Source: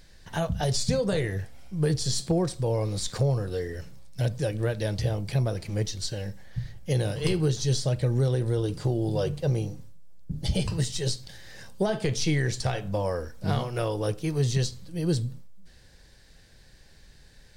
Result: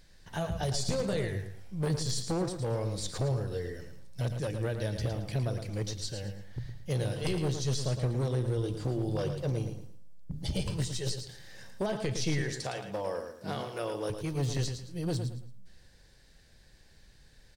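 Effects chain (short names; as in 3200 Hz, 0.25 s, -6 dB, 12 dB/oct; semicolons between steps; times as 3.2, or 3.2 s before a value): one-sided fold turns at -21.5 dBFS; 12.41–14.1 HPF 200 Hz 12 dB/oct; feedback echo 0.111 s, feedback 29%, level -8 dB; gain -5.5 dB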